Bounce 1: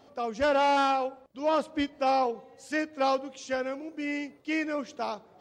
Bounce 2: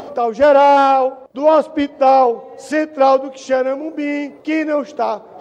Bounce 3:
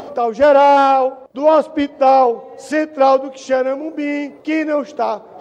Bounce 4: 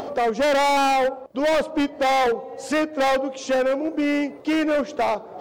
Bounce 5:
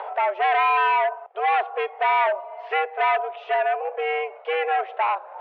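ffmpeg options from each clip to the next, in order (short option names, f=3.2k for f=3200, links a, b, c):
-filter_complex "[0:a]equalizer=f=580:w=0.48:g=12,asplit=2[a][b];[b]acompressor=mode=upward:threshold=-19dB:ratio=2.5,volume=2dB[c];[a][c]amix=inputs=2:normalize=0,volume=-3.5dB"
-af anull
-af "asoftclip=type=hard:threshold=-17.5dB"
-af "aemphasis=mode=production:type=bsi,highpass=f=260:t=q:w=0.5412,highpass=f=260:t=q:w=1.307,lowpass=f=2.6k:t=q:w=0.5176,lowpass=f=2.6k:t=q:w=0.7071,lowpass=f=2.6k:t=q:w=1.932,afreqshift=170"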